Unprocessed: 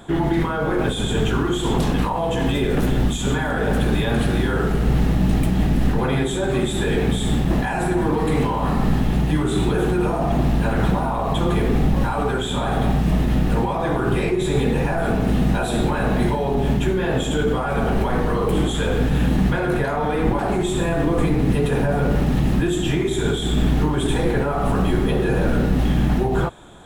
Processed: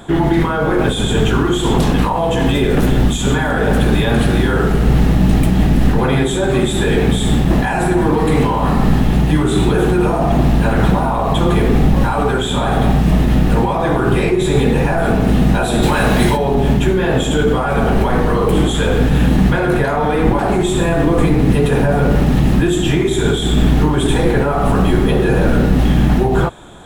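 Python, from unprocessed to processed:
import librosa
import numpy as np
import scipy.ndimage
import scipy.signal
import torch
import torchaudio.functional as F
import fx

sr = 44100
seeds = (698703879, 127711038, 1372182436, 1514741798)

y = fx.high_shelf(x, sr, hz=2100.0, db=10.0, at=(15.82, 16.36), fade=0.02)
y = F.gain(torch.from_numpy(y), 6.0).numpy()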